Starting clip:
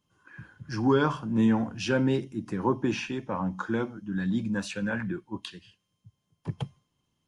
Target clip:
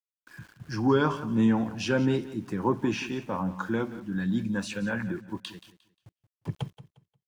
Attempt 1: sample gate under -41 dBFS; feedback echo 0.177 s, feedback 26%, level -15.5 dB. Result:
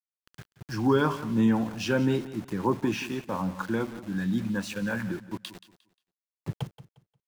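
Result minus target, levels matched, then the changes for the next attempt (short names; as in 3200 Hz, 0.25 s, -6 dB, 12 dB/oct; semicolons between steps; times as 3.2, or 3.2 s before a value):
sample gate: distortion +13 dB
change: sample gate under -52 dBFS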